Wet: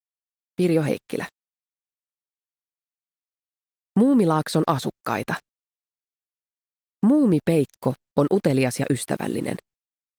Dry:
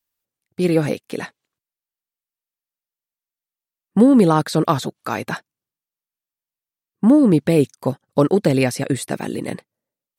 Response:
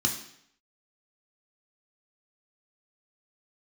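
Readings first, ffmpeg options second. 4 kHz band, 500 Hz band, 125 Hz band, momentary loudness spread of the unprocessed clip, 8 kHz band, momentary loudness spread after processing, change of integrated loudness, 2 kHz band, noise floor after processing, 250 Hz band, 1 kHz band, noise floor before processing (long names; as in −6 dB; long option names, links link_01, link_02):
−3.5 dB, −4.0 dB, −3.5 dB, 17 LU, −2.5 dB, 13 LU, −4.5 dB, −2.5 dB, below −85 dBFS, −4.5 dB, −3.5 dB, below −85 dBFS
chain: -af "acompressor=threshold=-16dB:ratio=3,aeval=exprs='val(0)*gte(abs(val(0)),0.00944)':channel_layout=same" -ar 48000 -c:a libopus -b:a 32k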